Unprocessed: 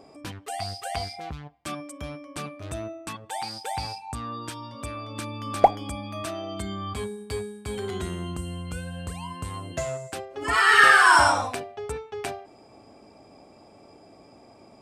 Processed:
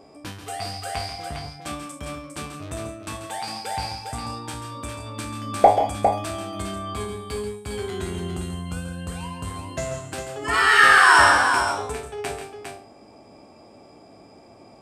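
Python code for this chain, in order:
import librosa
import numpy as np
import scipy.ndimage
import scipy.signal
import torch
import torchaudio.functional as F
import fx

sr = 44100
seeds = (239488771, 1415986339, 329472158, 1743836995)

y = fx.spec_trails(x, sr, decay_s=0.35)
y = fx.echo_multitap(y, sr, ms=(137, 165, 405), db=(-9.5, -12.5, -6.0))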